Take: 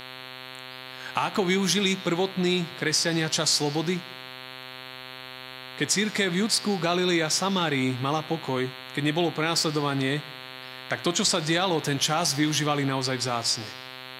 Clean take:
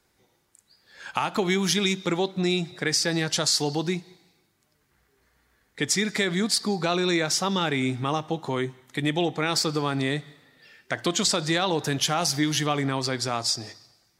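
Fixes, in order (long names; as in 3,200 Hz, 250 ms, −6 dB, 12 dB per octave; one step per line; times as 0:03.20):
hum removal 129 Hz, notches 34
downward expander −34 dBFS, range −21 dB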